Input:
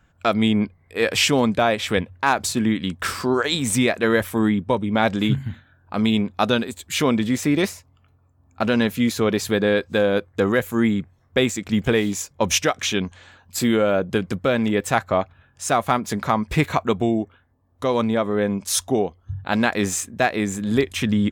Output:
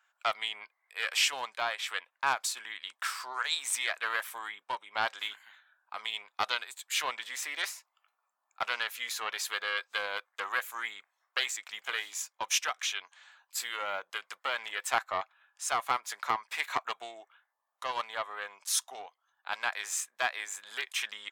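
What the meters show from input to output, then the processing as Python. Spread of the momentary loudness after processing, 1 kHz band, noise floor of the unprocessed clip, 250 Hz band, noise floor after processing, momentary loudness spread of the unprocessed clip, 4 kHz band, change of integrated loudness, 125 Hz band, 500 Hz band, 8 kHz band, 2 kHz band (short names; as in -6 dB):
10 LU, -9.0 dB, -59 dBFS, -39.5 dB, -82 dBFS, 7 LU, -6.5 dB, -12.0 dB, under -35 dB, -22.0 dB, -7.0 dB, -7.0 dB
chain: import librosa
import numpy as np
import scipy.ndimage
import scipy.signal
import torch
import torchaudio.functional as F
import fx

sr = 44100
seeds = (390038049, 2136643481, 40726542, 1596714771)

y = scipy.signal.sosfilt(scipy.signal.butter(4, 870.0, 'highpass', fs=sr, output='sos'), x)
y = fx.rider(y, sr, range_db=4, speed_s=2.0)
y = fx.doppler_dist(y, sr, depth_ms=0.11)
y = F.gain(torch.from_numpy(y), -7.0).numpy()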